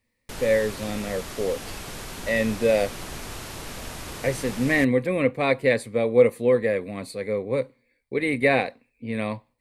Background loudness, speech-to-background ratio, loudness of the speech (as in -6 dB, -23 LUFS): -36.5 LUFS, 12.5 dB, -24.0 LUFS